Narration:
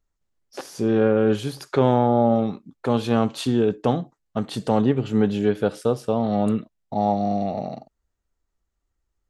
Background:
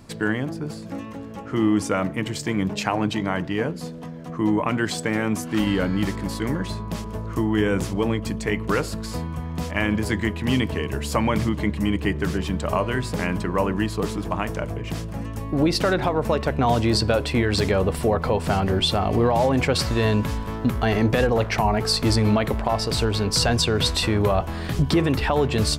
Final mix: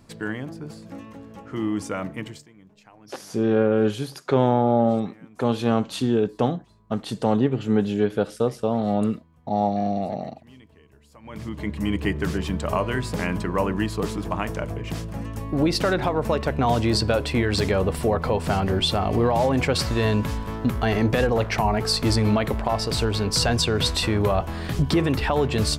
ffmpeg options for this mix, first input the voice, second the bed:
-filter_complex "[0:a]adelay=2550,volume=0.891[s0];[1:a]volume=11.2,afade=t=out:st=2.2:d=0.28:silence=0.0794328,afade=t=in:st=11.22:d=0.76:silence=0.0446684[s1];[s0][s1]amix=inputs=2:normalize=0"

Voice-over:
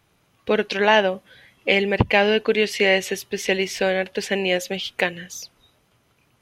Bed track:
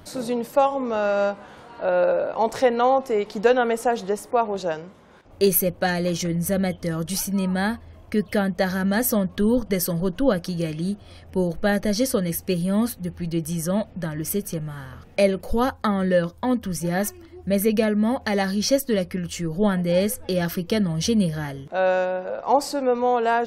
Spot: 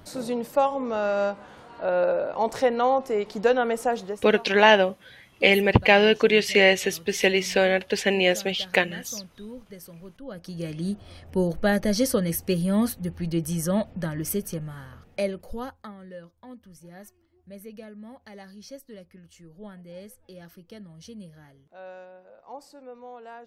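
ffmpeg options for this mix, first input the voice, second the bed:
-filter_complex "[0:a]adelay=3750,volume=1.06[s0];[1:a]volume=6.68,afade=t=out:st=3.94:d=0.36:silence=0.133352,afade=t=in:st=10.28:d=0.75:silence=0.105925,afade=t=out:st=14.02:d=1.94:silence=0.0891251[s1];[s0][s1]amix=inputs=2:normalize=0"

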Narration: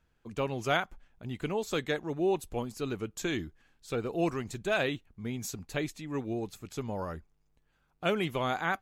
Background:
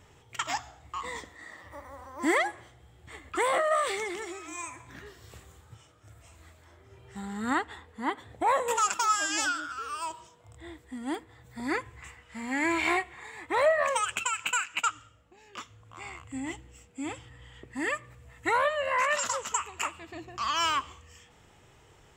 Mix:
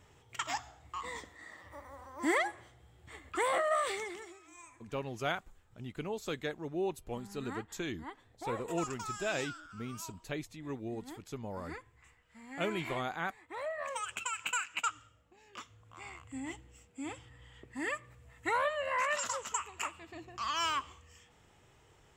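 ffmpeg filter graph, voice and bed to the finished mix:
-filter_complex "[0:a]adelay=4550,volume=0.501[s0];[1:a]volume=1.88,afade=t=out:st=3.9:d=0.49:silence=0.281838,afade=t=in:st=13.68:d=0.79:silence=0.316228[s1];[s0][s1]amix=inputs=2:normalize=0"

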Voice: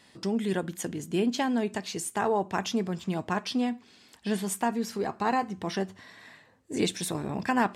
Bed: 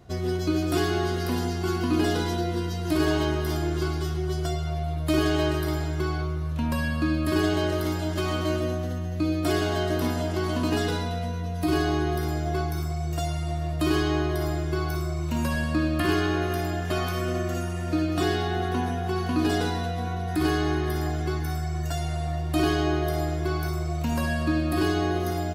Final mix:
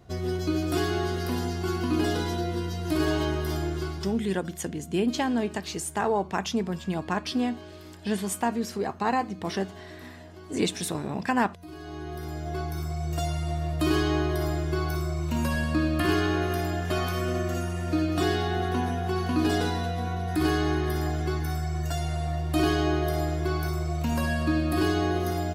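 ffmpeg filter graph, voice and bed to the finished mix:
-filter_complex "[0:a]adelay=3800,volume=1.12[s0];[1:a]volume=6.68,afade=t=out:st=3.61:d=0.75:silence=0.141254,afade=t=in:st=11.77:d=1.43:silence=0.11885[s1];[s0][s1]amix=inputs=2:normalize=0"

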